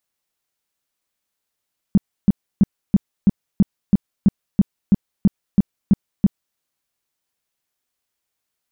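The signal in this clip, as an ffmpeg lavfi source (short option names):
-f lavfi -i "aevalsrc='0.422*sin(2*PI*198*mod(t,0.33))*lt(mod(t,0.33),5/198)':d=4.62:s=44100"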